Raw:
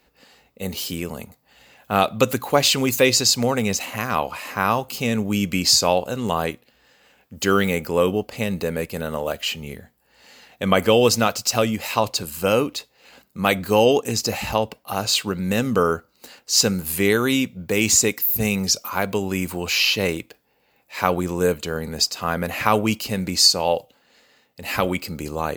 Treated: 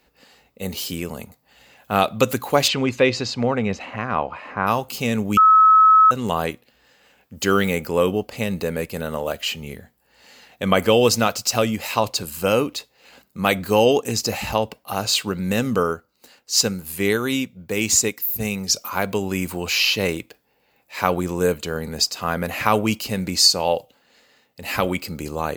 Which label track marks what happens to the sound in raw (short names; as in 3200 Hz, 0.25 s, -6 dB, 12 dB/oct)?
2.670000	4.660000	LPF 3400 Hz -> 1700 Hz
5.370000	6.110000	bleep 1290 Hz -8.5 dBFS
15.760000	18.700000	upward expander, over -26 dBFS